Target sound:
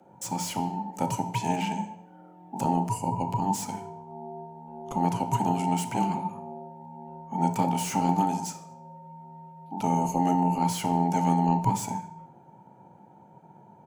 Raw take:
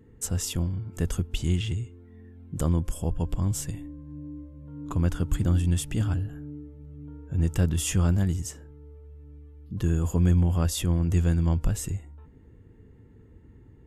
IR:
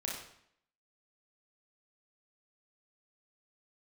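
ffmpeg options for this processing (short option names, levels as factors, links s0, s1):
-filter_complex "[0:a]afreqshift=-450,bandreject=f=60:t=h:w=6,bandreject=f=120:t=h:w=6,bandreject=f=180:t=h:w=6,bandreject=f=240:t=h:w=6,bandreject=f=300:t=h:w=6,bandreject=f=360:t=h:w=6,acrossover=split=810[s0][s1];[s0]aeval=exprs='val(0)*sin(2*PI*540*n/s)':c=same[s2];[s1]volume=56.2,asoftclip=hard,volume=0.0178[s3];[s2][s3]amix=inputs=2:normalize=0,aecho=1:1:75|150|225:0.0631|0.0315|0.0158,asplit=2[s4][s5];[1:a]atrim=start_sample=2205[s6];[s5][s6]afir=irnorm=-1:irlink=0,volume=0.398[s7];[s4][s7]amix=inputs=2:normalize=0"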